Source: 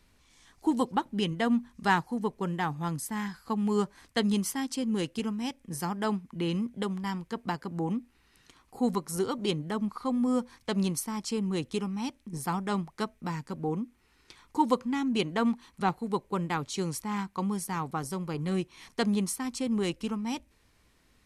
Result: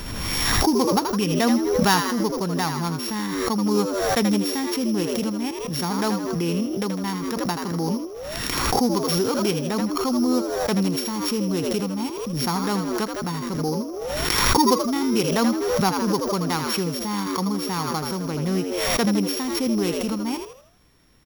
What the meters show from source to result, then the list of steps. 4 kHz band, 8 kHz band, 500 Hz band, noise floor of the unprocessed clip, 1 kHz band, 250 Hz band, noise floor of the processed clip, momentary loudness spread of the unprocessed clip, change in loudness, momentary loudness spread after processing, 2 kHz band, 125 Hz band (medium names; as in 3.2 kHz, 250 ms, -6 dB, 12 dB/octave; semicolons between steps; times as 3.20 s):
+12.5 dB, +11.0 dB, +9.5 dB, -66 dBFS, +7.5 dB, +7.0 dB, -33 dBFS, 7 LU, +8.0 dB, 7 LU, +8.0 dB, +7.0 dB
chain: sorted samples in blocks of 8 samples; frequency-shifting echo 80 ms, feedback 39%, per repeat +87 Hz, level -7 dB; swell ahead of each attack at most 25 dB/s; trim +5 dB